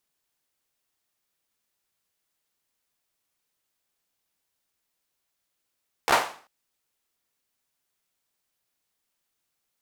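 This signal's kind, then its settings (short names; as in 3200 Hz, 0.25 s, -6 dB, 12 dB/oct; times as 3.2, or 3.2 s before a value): hand clap length 0.39 s, apart 14 ms, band 860 Hz, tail 0.43 s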